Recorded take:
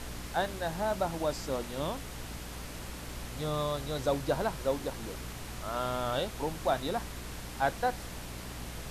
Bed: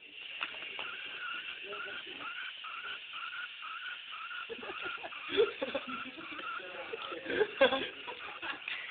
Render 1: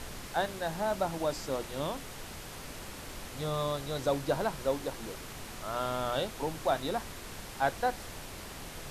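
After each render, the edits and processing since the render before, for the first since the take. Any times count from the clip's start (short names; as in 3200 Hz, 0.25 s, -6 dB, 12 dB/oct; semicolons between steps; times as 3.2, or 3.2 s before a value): de-hum 60 Hz, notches 5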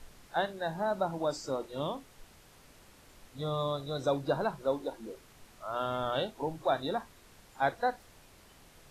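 noise print and reduce 14 dB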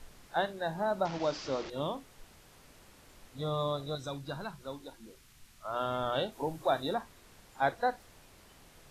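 1.05–1.7 delta modulation 32 kbps, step -36.5 dBFS; 3.95–5.65 bell 530 Hz -13 dB 2.3 oct; 6.32–6.94 high shelf 8500 Hz +8 dB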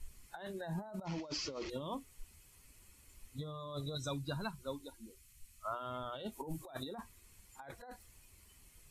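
per-bin expansion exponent 1.5; negative-ratio compressor -43 dBFS, ratio -1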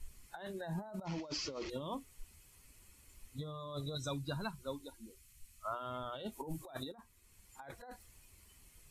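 6.92–7.58 fade in, from -13.5 dB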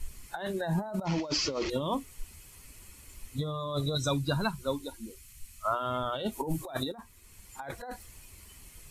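gain +10.5 dB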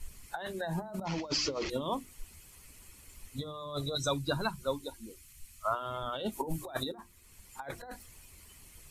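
harmonic-percussive split harmonic -6 dB; notches 50/100/150/200/250/300/350 Hz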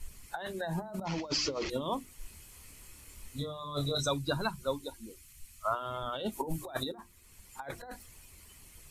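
2.18–4.06 doubler 28 ms -3 dB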